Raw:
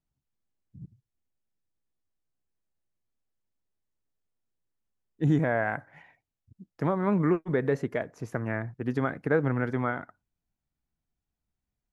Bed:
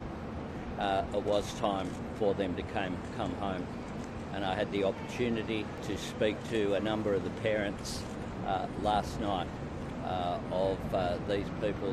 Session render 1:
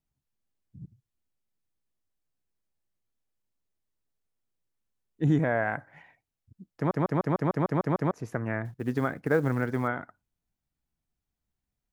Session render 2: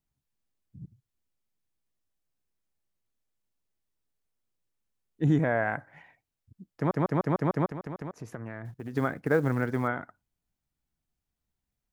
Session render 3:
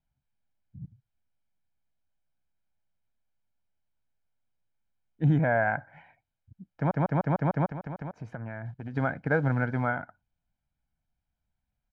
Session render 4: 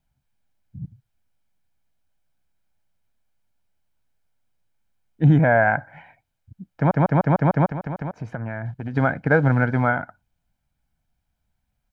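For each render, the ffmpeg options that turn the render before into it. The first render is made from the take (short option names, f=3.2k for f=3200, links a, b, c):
-filter_complex "[0:a]asettb=1/sr,asplit=3[a][b][c];[a]atrim=end=8.654[d];[b]atrim=start=8.65:end=9.88,asetpts=PTS-STARTPTS,afade=t=in:d=0.004:c=qsin,afade=t=out:st=1.226:d=0.004:c=qsin,acrusher=bits=8:mode=log:mix=0:aa=0.000001[e];[c]atrim=start=9.876[f];[d][e]acrossfade=d=0.004:c1=hsin:c2=qsin[g];[g][f]acrossfade=d=0.004:c1=qsin:c2=hsin,asplit=10[h][i][j][k][l][m][n][o][p][q];[h]atrim=end=6.912[r];[i]atrim=start=6.758:end=6.912[s];[j]atrim=start=6.758:end=6.912[t];[k]atrim=start=6.758:end=6.912[u];[l]atrim=start=6.758:end=6.912[v];[m]atrim=start=6.758:end=6.912[w];[n]atrim=start=6.758:end=6.912[x];[o]atrim=start=6.758:end=6.912[y];[p]atrim=start=6.758:end=6.912[z];[q]atrim=start=8.108[aa];[r][s]acrossfade=d=0.004:c1=hsin:c2=hsin[ab];[ab][t]acrossfade=d=0.004:c1=hsin:c2=hsin[ac];[ac][u]acrossfade=d=0.004:c1=hsin:c2=hsin[ad];[ad][v]acrossfade=d=0.004:c1=hsin:c2=hsin[ae];[ae][w]acrossfade=d=0.004:c1=hsin:c2=hsin[af];[af][x]acrossfade=d=0.004:c1=hsin:c2=hsin[ag];[ag][y]acrossfade=d=0.004:c1=hsin:c2=hsin[ah];[ah][z]acrossfade=d=0.004:c1=hsin:c2=hsin[ai];[ai][aa]acrossfade=d=0.004:c1=hsin:c2=hsin"
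-filter_complex "[0:a]asplit=3[a][b][c];[a]afade=t=out:st=7.65:d=0.02[d];[b]acompressor=threshold=-34dB:ratio=5:attack=3.2:release=140:knee=1:detection=peak,afade=t=in:st=7.65:d=0.02,afade=t=out:st=8.93:d=0.02[e];[c]afade=t=in:st=8.93:d=0.02[f];[d][e][f]amix=inputs=3:normalize=0"
-af "lowpass=2.8k,aecho=1:1:1.3:0.57"
-af "volume=8dB"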